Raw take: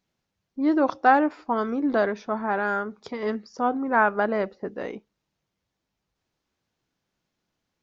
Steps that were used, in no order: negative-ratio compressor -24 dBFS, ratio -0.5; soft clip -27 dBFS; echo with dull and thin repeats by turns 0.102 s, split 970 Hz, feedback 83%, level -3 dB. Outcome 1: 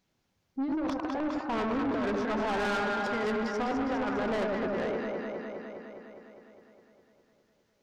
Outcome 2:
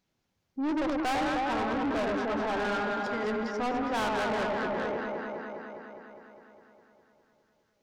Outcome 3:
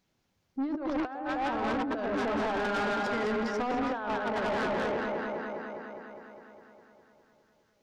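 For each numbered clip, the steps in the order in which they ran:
negative-ratio compressor > echo with dull and thin repeats by turns > soft clip; echo with dull and thin repeats by turns > soft clip > negative-ratio compressor; echo with dull and thin repeats by turns > negative-ratio compressor > soft clip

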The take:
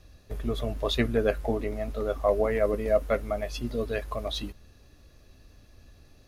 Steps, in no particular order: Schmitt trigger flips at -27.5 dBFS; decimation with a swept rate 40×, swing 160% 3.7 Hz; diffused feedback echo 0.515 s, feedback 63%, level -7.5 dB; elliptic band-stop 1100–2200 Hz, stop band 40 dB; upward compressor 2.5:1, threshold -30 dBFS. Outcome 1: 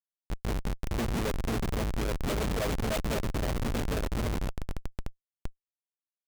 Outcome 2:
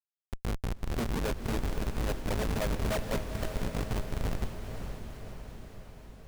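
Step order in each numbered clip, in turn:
upward compressor > diffused feedback echo > decimation with a swept rate > elliptic band-stop > Schmitt trigger; elliptic band-stop > upward compressor > decimation with a swept rate > Schmitt trigger > diffused feedback echo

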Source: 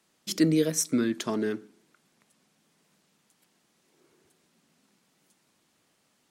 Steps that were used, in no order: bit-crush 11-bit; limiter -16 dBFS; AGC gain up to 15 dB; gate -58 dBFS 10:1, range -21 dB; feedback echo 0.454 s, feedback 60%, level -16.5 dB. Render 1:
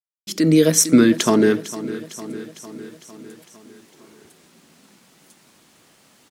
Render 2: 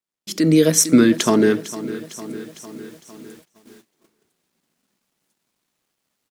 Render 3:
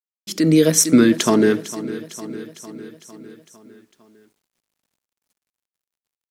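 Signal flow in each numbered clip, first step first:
limiter > feedback echo > AGC > gate > bit-crush; limiter > feedback echo > bit-crush > gate > AGC; gate > feedback echo > limiter > AGC > bit-crush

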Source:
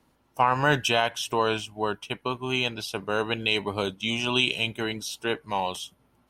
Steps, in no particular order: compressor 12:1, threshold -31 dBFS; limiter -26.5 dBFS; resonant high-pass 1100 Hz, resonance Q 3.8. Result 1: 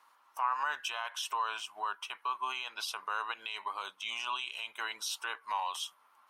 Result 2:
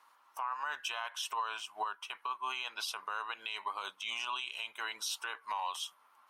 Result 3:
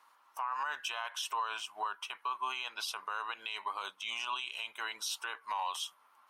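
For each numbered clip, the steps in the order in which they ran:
compressor > limiter > resonant high-pass; resonant high-pass > compressor > limiter; compressor > resonant high-pass > limiter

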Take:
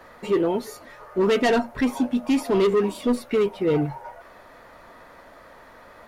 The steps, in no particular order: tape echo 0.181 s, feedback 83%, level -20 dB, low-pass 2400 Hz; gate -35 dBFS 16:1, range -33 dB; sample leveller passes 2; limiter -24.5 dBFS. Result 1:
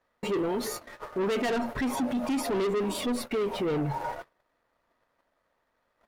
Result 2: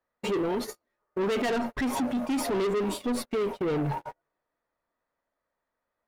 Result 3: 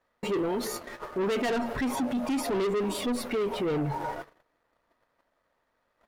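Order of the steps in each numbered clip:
sample leveller > limiter > tape echo > gate; limiter > tape echo > gate > sample leveller; tape echo > sample leveller > limiter > gate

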